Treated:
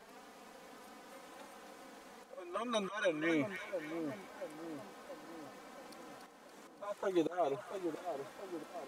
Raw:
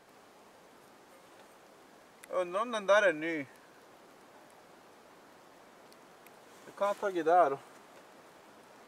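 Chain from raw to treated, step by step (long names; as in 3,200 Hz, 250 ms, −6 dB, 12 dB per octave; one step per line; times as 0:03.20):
volume swells 546 ms
flanger swept by the level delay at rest 5.2 ms, full sweep at −33.5 dBFS
echo with a time of its own for lows and highs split 1,100 Hz, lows 680 ms, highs 284 ms, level −7 dB
level +5.5 dB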